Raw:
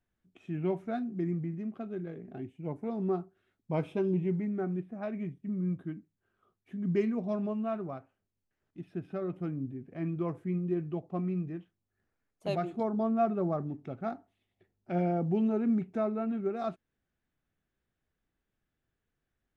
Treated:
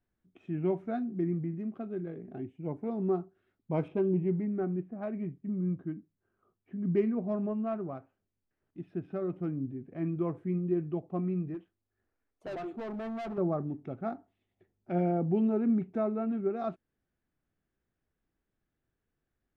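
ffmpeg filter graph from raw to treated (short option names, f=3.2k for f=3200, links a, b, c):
-filter_complex "[0:a]asettb=1/sr,asplit=3[a][b][c];[a]atrim=end=3.884[d];[b]atrim=start=3.88:end=7.95,asetpts=PTS-STARTPTS,afade=t=in:d=0.004:c=qsin,afade=t=out:st=4.066:d=0.004:c=qsin,bandreject=f=3.5k:w=16,adynamicsmooth=sensitivity=5.5:basefreq=3k[e];[c]atrim=start=7.946[f];[d][e]acrossfade=d=0.004:c1=hsin:c2=qsin[g];[g][f]acrossfade=d=0.004:c1=qsin:c2=hsin,asettb=1/sr,asplit=3[h][i][j];[h]atrim=end=11.544[k];[i]atrim=start=11.54:end=13.38,asetpts=PTS-STARTPTS,afade=t=in:d=0.004:c=qsin,afade=t=out:st=1.836:d=0.004:c=qsin,equalizer=f=160:t=o:w=0.48:g=-13.5,asoftclip=type=hard:threshold=-36dB[l];[j]atrim=start=13.376[m];[k][l]acrossfade=d=0.004:c1=hsin:c2=qsin[n];[n][m]acrossfade=d=0.004:c1=qsin:c2=hsin,lowpass=f=2.1k:p=1,equalizer=f=330:t=o:w=0.77:g=2.5"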